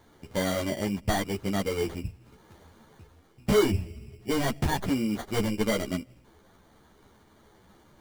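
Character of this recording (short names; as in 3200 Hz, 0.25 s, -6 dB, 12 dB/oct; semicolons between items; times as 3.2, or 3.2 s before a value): aliases and images of a low sample rate 2600 Hz, jitter 0%; a shimmering, thickened sound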